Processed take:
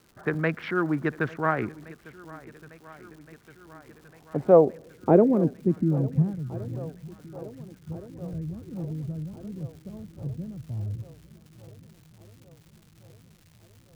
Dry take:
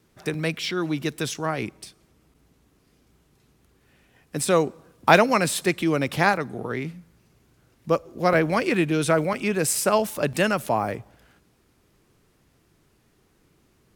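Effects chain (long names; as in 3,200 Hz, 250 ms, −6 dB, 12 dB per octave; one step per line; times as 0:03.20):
adaptive Wiener filter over 15 samples
low-pass filter sweep 1,600 Hz → 100 Hz, 0:03.61–0:06.69
surface crackle 340 per second −46 dBFS
feedback echo with a long and a short gap by turns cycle 1,419 ms, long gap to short 1.5 to 1, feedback 57%, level −20 dB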